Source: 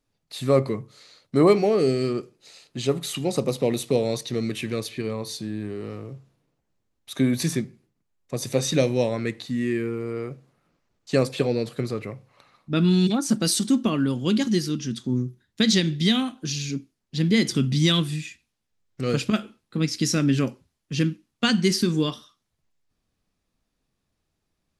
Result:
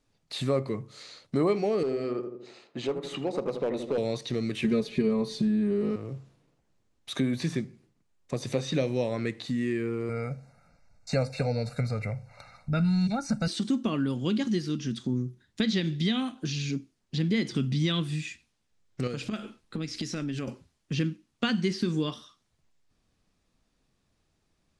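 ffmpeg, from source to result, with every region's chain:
-filter_complex "[0:a]asettb=1/sr,asplit=3[s0][s1][s2];[s0]atrim=end=1.834[s3];[s1]atrim=start=1.83:end=3.98,asetpts=PTS-STARTPTS,afade=t=in:d=0.004:c=qsin,afade=t=out:st=2.146:d=0.004:c=qsin,bandpass=f=770:t=q:w=0.64,asoftclip=type=hard:threshold=0.119,asplit=2[s4][s5];[s5]adelay=80,lowpass=f=900:p=1,volume=0.473,asplit=2[s6][s7];[s7]adelay=80,lowpass=f=900:p=1,volume=0.49,asplit=2[s8][s9];[s9]adelay=80,lowpass=f=900:p=1,volume=0.49,asplit=2[s10][s11];[s11]adelay=80,lowpass=f=900:p=1,volume=0.49,asplit=2[s12][s13];[s13]adelay=80,lowpass=f=900:p=1,volume=0.49,asplit=2[s14][s15];[s15]adelay=80,lowpass=f=900:p=1,volume=0.49[s16];[s4][s6][s8][s10][s12][s14][s16]amix=inputs=7:normalize=0,atrim=end_sample=94815[s17];[s2]atrim=start=3.976[s18];[s3][s17]acrossfade=d=0.004:c1=hsin:c2=qsin[s19];[s19][s18]acrossfade=d=0.004:c1=qsin:c2=hsin,asettb=1/sr,asplit=3[s20][s21][s22];[s20]atrim=end=4.644[s23];[s21]atrim=start=4.64:end=5.96,asetpts=PTS-STARTPTS,afade=t=in:d=0.004:c=qsin,afade=t=out:st=1.316:d=0.004:c=qsin,lowshelf=f=450:g=11.5,aecho=1:1:4.8:0.95,atrim=end_sample=58212[s24];[s22]atrim=start=5.956[s25];[s23][s24]acrossfade=d=0.004:c1=hsin:c2=qsin[s26];[s26][s25]acrossfade=d=0.004:c1=qsin:c2=hsin,asettb=1/sr,asplit=3[s27][s28][s29];[s27]atrim=end=10.094[s30];[s28]atrim=start=10.09:end=13.48,asetpts=PTS-STARTPTS,afade=t=in:d=0.004:c=qsin,afade=t=out:st=3.386:d=0.004:c=qsin,asubboost=boost=4.5:cutoff=110,asuperstop=centerf=3200:order=12:qfactor=3.3,aecho=1:1:1.4:0.87,atrim=end_sample=149499[s31];[s29]atrim=start=13.476[s32];[s30][s31]acrossfade=d=0.004:c1=hsin:c2=qsin[s33];[s33][s32]acrossfade=d=0.004:c1=qsin:c2=hsin,asettb=1/sr,asplit=3[s34][s35][s36];[s34]atrim=end=19.074[s37];[s35]atrim=start=19.07:end=20.48,asetpts=PTS-STARTPTS,afade=t=in:d=0.004:c=qsin,afade=t=out:st=1.406:d=0.004:c=qsin,acompressor=threshold=0.0282:ratio=3:attack=3.2:release=140:knee=1:detection=peak,asubboost=boost=9:cutoff=62[s38];[s36]atrim=start=20.476[s39];[s37][s38]acrossfade=d=0.004:c1=hsin:c2=qsin[s40];[s40][s39]acrossfade=d=0.004:c1=qsin:c2=hsin,acrossover=split=4200[s41][s42];[s42]acompressor=threshold=0.00631:ratio=4:attack=1:release=60[s43];[s41][s43]amix=inputs=2:normalize=0,lowpass=f=9900:w=0.5412,lowpass=f=9900:w=1.3066,acompressor=threshold=0.0158:ratio=2,volume=1.58"

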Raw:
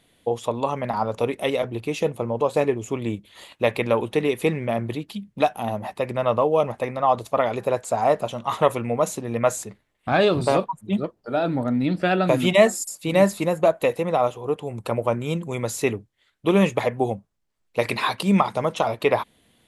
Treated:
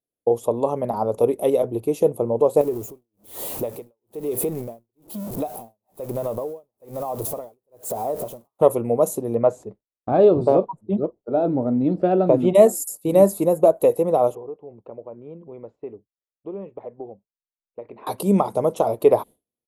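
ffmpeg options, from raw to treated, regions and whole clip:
-filter_complex "[0:a]asettb=1/sr,asplit=3[s0][s1][s2];[s0]atrim=end=2.614[s3];[s1]atrim=start=2.61:end=8.59,asetpts=PTS-STARTPTS,afade=t=in:d=0.004:c=qsin,afade=t=out:st=5.976:d=0.004:c=qsin,aeval=exprs='val(0)+0.5*0.0501*sgn(val(0))':c=same,acompressor=threshold=0.0562:ratio=5:attack=3.2:release=140:knee=1:detection=peak,tremolo=f=1.1:d=0.96[s4];[s2]atrim=start=8.586[s5];[s3][s4]acrossfade=d=0.004:c1=hsin:c2=qsin[s6];[s6][s5]acrossfade=d=0.004:c1=qsin:c2=hsin,asettb=1/sr,asplit=3[s7][s8][s9];[s7]atrim=end=9.354[s10];[s8]atrim=start=9.35:end=12.55,asetpts=PTS-STARTPTS,afade=t=in:d=0.004:c=qsin,afade=t=out:st=3.196:d=0.004:c=qsin,lowpass=4500,highshelf=f=3300:g=-9.5[s11];[s9]atrim=start=12.546[s12];[s10][s11]acrossfade=d=0.004:c1=hsin:c2=qsin[s13];[s13][s12]acrossfade=d=0.004:c1=qsin:c2=hsin,asettb=1/sr,asplit=3[s14][s15][s16];[s14]atrim=end=14.354[s17];[s15]atrim=start=14.35:end=18.07,asetpts=PTS-STARTPTS,afade=t=in:d=0.004:c=qsin,afade=t=out:st=3.716:d=0.004:c=qsin,lowpass=f=2500:w=0.5412,lowpass=f=2500:w=1.3066,acompressor=threshold=0.02:ratio=5:attack=3.2:release=140:knee=1:detection=peak,equalizer=f=110:t=o:w=0.87:g=-4.5[s18];[s16]atrim=start=18.066[s19];[s17][s18]acrossfade=d=0.004:c1=hsin:c2=qsin[s20];[s20][s19]acrossfade=d=0.004:c1=qsin:c2=hsin,agate=range=0.0224:threshold=0.0224:ratio=3:detection=peak,firequalizer=gain_entry='entry(170,0);entry(400,8);entry(1700,-15);entry(12000,11)':delay=0.05:min_phase=1,volume=0.891"

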